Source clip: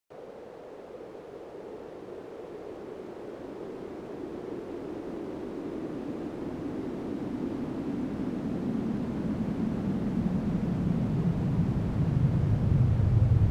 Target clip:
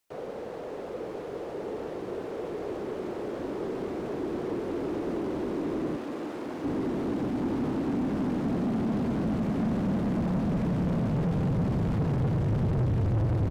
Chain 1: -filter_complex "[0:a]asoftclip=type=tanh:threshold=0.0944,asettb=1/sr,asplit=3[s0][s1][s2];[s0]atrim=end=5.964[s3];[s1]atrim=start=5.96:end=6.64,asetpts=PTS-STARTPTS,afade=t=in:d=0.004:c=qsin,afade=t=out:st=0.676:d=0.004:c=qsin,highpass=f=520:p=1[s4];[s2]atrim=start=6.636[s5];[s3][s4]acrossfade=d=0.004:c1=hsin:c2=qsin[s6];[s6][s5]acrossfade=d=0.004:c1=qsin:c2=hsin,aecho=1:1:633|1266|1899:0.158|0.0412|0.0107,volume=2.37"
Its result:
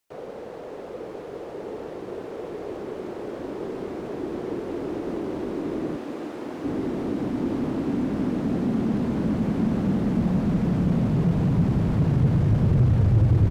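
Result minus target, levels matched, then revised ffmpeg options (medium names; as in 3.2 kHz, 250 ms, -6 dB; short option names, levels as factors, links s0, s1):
saturation: distortion -9 dB
-filter_complex "[0:a]asoftclip=type=tanh:threshold=0.0266,asettb=1/sr,asplit=3[s0][s1][s2];[s0]atrim=end=5.964[s3];[s1]atrim=start=5.96:end=6.64,asetpts=PTS-STARTPTS,afade=t=in:d=0.004:c=qsin,afade=t=out:st=0.676:d=0.004:c=qsin,highpass=f=520:p=1[s4];[s2]atrim=start=6.636[s5];[s3][s4]acrossfade=d=0.004:c1=hsin:c2=qsin[s6];[s6][s5]acrossfade=d=0.004:c1=qsin:c2=hsin,aecho=1:1:633|1266|1899:0.158|0.0412|0.0107,volume=2.37"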